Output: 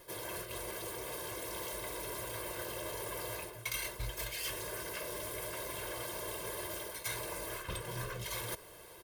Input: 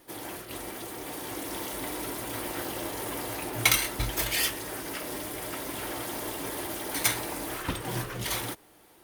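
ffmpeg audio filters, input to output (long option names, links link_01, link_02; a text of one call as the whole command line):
ffmpeg -i in.wav -af "areverse,acompressor=threshold=-43dB:ratio=6,areverse,aecho=1:1:1.9:0.83,volume=2.5dB" out.wav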